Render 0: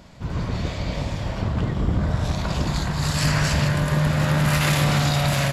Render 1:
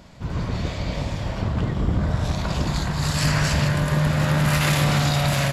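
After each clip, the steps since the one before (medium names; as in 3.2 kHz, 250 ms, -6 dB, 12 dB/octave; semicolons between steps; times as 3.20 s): no audible change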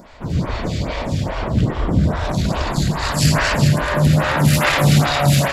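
reverberation RT60 0.20 s, pre-delay 82 ms, DRR 9.5 dB; lamp-driven phase shifter 2.4 Hz; trim +8.5 dB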